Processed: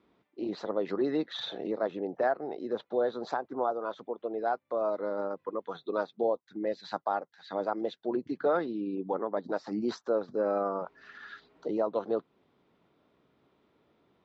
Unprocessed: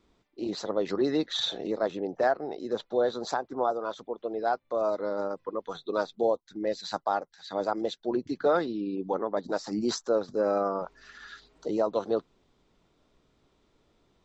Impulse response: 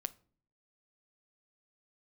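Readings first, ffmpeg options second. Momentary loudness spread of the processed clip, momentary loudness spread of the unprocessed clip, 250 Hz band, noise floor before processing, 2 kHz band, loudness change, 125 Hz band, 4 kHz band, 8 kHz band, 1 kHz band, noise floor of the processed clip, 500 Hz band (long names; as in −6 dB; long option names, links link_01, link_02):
8 LU, 9 LU, −2.0 dB, −70 dBFS, −3.0 dB, −2.5 dB, −3.5 dB, −8.5 dB, can't be measured, −2.5 dB, −75 dBFS, −2.5 dB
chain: -filter_complex "[0:a]asplit=2[link_01][link_02];[link_02]acompressor=threshold=-36dB:ratio=6,volume=-2.5dB[link_03];[link_01][link_03]amix=inputs=2:normalize=0,highpass=130,lowpass=2800,volume=-4dB"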